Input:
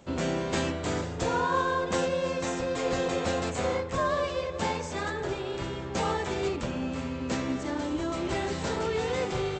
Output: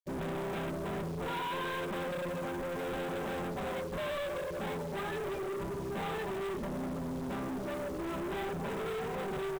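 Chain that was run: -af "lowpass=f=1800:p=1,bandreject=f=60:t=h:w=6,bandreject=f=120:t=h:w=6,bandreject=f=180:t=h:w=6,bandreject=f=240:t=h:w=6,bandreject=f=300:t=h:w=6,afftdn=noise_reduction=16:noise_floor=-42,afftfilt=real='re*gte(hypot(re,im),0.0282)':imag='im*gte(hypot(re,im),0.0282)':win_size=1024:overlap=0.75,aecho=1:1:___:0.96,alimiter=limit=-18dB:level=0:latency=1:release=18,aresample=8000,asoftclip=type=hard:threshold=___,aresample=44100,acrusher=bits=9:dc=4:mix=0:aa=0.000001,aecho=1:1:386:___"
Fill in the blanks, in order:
5.1, -34.5dB, 0.0944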